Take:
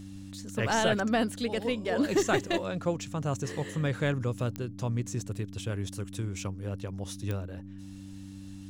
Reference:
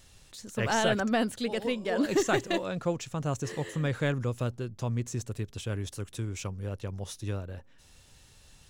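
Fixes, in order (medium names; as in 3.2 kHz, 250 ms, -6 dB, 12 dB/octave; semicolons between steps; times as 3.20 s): de-click; de-hum 97 Hz, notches 3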